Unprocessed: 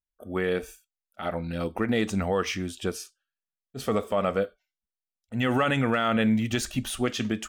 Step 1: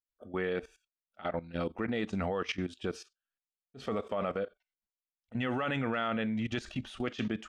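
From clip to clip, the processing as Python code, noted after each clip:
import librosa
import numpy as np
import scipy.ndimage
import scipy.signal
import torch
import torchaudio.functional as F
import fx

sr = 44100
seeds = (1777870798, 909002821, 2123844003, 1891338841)

y = scipy.signal.sosfilt(scipy.signal.butter(2, 4100.0, 'lowpass', fs=sr, output='sos'), x)
y = fx.low_shelf(y, sr, hz=120.0, db=-5.5)
y = fx.level_steps(y, sr, step_db=16)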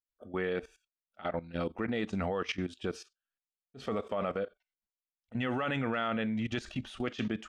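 y = x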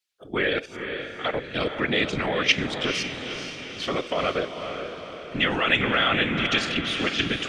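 y = fx.weighting(x, sr, curve='D')
y = fx.whisperise(y, sr, seeds[0])
y = fx.echo_diffused(y, sr, ms=468, feedback_pct=54, wet_db=-7.0)
y = F.gain(torch.from_numpy(y), 7.0).numpy()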